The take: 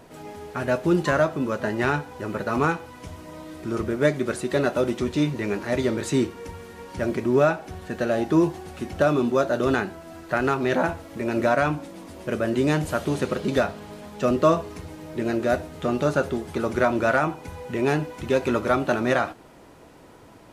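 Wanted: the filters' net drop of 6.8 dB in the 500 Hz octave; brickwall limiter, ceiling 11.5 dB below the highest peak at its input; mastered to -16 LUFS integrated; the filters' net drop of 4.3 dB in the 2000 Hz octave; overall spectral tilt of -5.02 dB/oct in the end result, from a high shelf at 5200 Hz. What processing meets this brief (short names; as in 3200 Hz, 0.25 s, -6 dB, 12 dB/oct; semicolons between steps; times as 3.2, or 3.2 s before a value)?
bell 500 Hz -9 dB; bell 2000 Hz -4.5 dB; high shelf 5200 Hz -8 dB; gain +18.5 dB; limiter -4.5 dBFS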